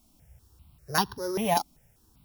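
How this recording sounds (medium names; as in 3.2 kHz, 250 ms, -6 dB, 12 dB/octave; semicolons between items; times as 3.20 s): a buzz of ramps at a fixed pitch in blocks of 8 samples; tremolo saw up 2.6 Hz, depth 35%; a quantiser's noise floor 12-bit, dither triangular; notches that jump at a steady rate 5.1 Hz 470–2200 Hz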